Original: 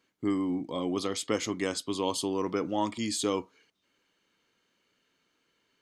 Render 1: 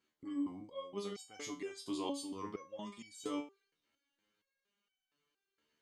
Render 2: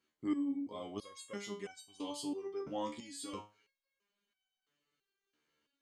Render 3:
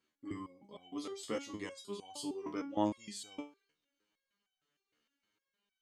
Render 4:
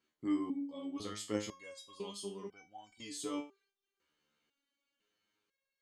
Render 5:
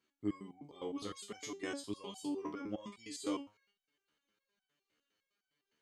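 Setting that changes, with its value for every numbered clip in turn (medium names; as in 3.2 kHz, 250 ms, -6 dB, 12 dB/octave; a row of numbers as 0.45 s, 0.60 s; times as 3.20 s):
resonator arpeggio, rate: 4.3 Hz, 3 Hz, 6.5 Hz, 2 Hz, 9.8 Hz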